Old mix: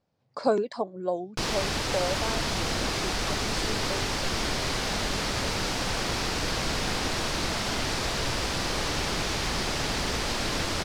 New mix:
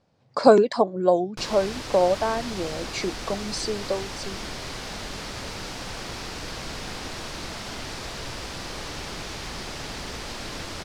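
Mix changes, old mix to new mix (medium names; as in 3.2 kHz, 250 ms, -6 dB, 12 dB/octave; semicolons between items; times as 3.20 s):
speech +9.5 dB; background -6.0 dB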